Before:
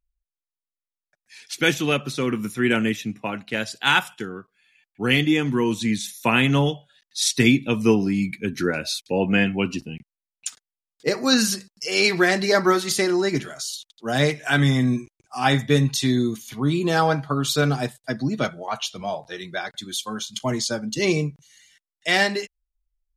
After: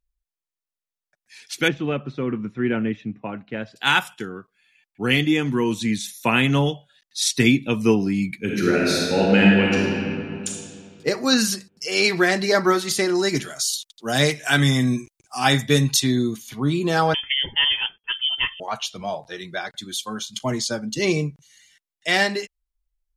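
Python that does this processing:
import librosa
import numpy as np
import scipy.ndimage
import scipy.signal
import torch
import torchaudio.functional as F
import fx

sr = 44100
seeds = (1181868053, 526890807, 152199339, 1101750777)

y = fx.spacing_loss(x, sr, db_at_10k=39, at=(1.68, 3.76))
y = fx.reverb_throw(y, sr, start_s=8.37, length_s=2.1, rt60_s=2.5, drr_db=-4.0)
y = fx.high_shelf(y, sr, hz=3600.0, db=9.5, at=(13.15, 16.0))
y = fx.freq_invert(y, sr, carrier_hz=3300, at=(17.14, 18.6))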